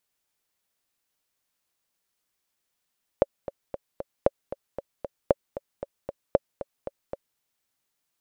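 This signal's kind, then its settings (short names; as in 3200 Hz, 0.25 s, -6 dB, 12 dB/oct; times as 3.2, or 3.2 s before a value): metronome 230 bpm, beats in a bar 4, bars 4, 558 Hz, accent 14.5 dB -4.5 dBFS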